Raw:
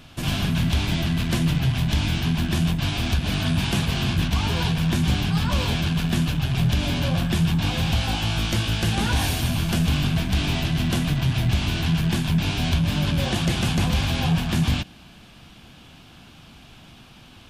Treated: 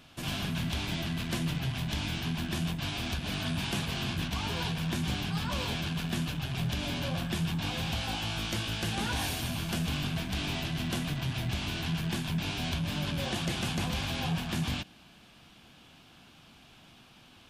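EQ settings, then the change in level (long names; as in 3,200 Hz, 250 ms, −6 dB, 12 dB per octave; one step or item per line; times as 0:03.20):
low-shelf EQ 140 Hz −8.5 dB
−7.0 dB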